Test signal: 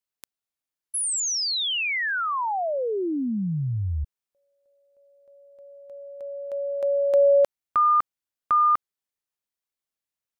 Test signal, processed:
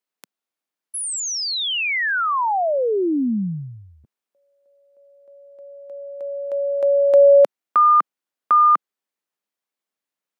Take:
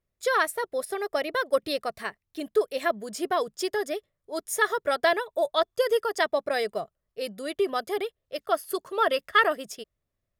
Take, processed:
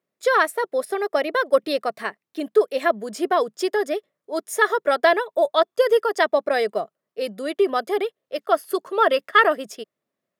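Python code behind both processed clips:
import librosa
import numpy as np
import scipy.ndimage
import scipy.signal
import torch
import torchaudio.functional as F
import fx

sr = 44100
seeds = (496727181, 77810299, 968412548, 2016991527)

y = scipy.signal.sosfilt(scipy.signal.butter(4, 190.0, 'highpass', fs=sr, output='sos'), x)
y = fx.high_shelf(y, sr, hz=3200.0, db=-7.5)
y = y * 10.0 ** (6.5 / 20.0)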